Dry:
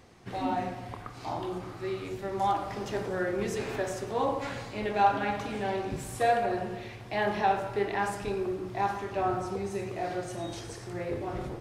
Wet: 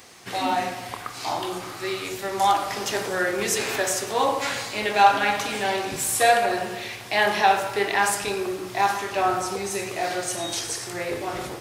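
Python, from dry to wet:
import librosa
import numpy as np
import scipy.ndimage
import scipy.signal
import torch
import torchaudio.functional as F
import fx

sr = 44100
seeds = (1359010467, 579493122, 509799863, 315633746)

y = fx.tilt_eq(x, sr, slope=3.5)
y = F.gain(torch.from_numpy(y), 8.5).numpy()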